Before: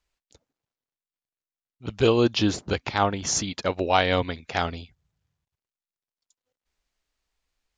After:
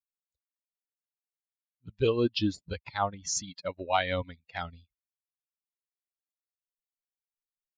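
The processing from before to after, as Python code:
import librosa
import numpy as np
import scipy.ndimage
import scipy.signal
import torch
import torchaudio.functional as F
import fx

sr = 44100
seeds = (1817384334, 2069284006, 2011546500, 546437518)

y = fx.bin_expand(x, sr, power=2.0)
y = F.gain(torch.from_numpy(y), -3.5).numpy()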